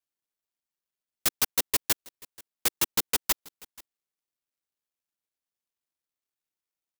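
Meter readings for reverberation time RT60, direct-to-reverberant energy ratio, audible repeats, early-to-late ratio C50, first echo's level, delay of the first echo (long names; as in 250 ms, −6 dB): no reverb audible, no reverb audible, 1, no reverb audible, −23.0 dB, 483 ms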